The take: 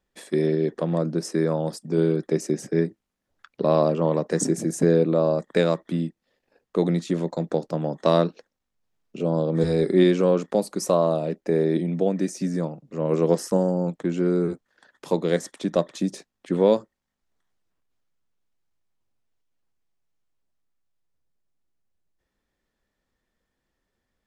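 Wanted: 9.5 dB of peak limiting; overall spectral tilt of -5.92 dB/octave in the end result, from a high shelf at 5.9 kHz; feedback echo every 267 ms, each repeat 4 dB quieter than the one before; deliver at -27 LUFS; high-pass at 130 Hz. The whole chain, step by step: high-pass 130 Hz; treble shelf 5.9 kHz +5 dB; peak limiter -15.5 dBFS; feedback delay 267 ms, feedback 63%, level -4 dB; trim -1 dB

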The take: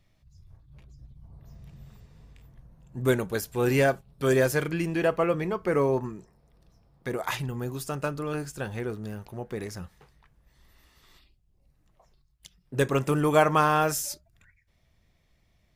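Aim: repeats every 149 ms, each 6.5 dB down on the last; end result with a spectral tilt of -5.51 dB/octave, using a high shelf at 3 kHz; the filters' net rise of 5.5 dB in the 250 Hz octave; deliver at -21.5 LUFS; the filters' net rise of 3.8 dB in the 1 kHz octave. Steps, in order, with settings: peaking EQ 250 Hz +7 dB; peaking EQ 1 kHz +4 dB; treble shelf 3 kHz +4 dB; feedback delay 149 ms, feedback 47%, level -6.5 dB; trim +1 dB

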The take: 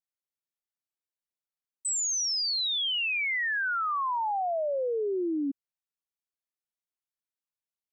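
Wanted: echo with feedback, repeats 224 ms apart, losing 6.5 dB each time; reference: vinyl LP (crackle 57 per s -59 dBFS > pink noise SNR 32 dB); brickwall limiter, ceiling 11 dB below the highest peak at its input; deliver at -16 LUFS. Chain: peak limiter -37 dBFS; feedback delay 224 ms, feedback 47%, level -6.5 dB; crackle 57 per s -59 dBFS; pink noise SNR 32 dB; trim +22 dB

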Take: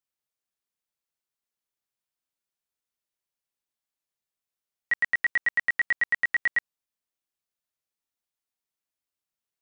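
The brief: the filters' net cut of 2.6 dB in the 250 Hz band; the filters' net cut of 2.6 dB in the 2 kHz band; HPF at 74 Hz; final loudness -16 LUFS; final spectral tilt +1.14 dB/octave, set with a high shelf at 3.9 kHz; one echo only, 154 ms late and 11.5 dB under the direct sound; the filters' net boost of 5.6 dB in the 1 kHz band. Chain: high-pass 74 Hz; peaking EQ 250 Hz -4 dB; peaking EQ 1 kHz +9 dB; peaking EQ 2 kHz -4 dB; treble shelf 3.9 kHz -3.5 dB; delay 154 ms -11.5 dB; trim +11.5 dB

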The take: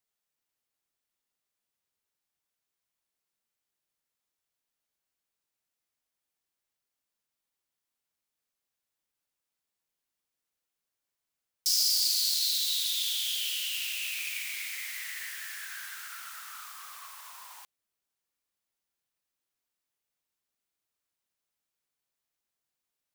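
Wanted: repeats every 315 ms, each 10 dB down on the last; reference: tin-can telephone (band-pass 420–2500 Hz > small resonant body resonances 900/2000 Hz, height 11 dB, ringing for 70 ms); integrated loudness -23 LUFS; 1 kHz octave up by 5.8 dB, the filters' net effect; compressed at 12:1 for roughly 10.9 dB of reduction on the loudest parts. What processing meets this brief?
peaking EQ 1 kHz +8 dB; compression 12:1, threshold -33 dBFS; band-pass 420–2500 Hz; feedback delay 315 ms, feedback 32%, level -10 dB; small resonant body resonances 900/2000 Hz, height 11 dB, ringing for 70 ms; trim +17.5 dB

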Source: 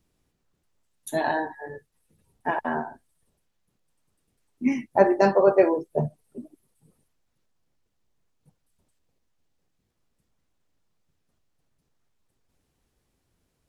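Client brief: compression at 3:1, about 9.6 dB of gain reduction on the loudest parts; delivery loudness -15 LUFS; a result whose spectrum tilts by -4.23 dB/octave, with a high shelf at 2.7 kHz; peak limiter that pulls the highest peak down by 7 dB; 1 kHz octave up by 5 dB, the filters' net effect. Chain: peaking EQ 1 kHz +5.5 dB; treble shelf 2.7 kHz +8 dB; compression 3:1, threshold -23 dBFS; trim +15.5 dB; peak limiter -1.5 dBFS

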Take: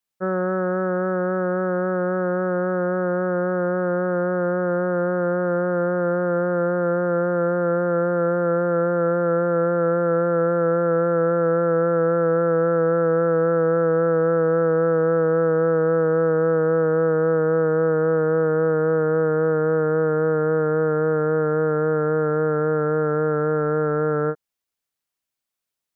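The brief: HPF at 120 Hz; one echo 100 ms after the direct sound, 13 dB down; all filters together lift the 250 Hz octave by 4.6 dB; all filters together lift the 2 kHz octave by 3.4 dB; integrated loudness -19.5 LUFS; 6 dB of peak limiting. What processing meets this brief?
high-pass 120 Hz; peaking EQ 250 Hz +9 dB; peaking EQ 2 kHz +5 dB; peak limiter -14.5 dBFS; delay 100 ms -13 dB; trim +3 dB

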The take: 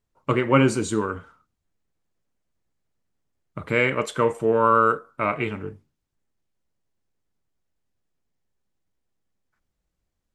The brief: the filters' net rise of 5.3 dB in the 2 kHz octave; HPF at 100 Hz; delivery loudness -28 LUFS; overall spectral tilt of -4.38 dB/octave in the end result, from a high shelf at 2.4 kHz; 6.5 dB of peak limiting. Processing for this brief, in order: high-pass 100 Hz; peaking EQ 2 kHz +8.5 dB; treble shelf 2.4 kHz -4 dB; trim -5.5 dB; peak limiter -14.5 dBFS

